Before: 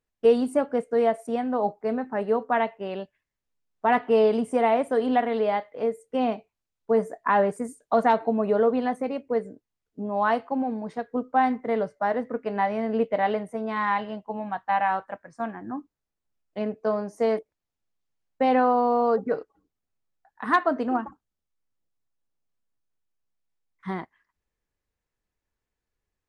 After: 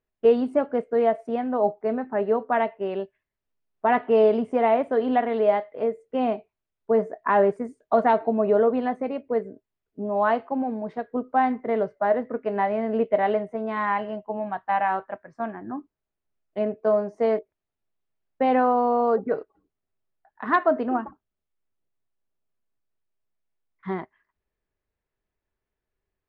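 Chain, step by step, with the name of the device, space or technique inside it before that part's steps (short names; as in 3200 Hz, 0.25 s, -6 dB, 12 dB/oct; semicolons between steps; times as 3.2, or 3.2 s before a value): 13.86–14.41 notch 3700 Hz, Q 5.8; inside a cardboard box (LPF 3100 Hz 12 dB/oct; small resonant body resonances 390/630 Hz, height 8 dB, ringing for 85 ms)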